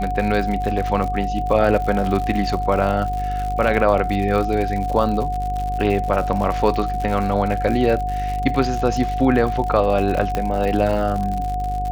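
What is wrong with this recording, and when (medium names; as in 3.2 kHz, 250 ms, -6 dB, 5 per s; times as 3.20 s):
buzz 50 Hz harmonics 11 -26 dBFS
crackle 100 per s -25 dBFS
whine 730 Hz -23 dBFS
10.35 s: pop -9 dBFS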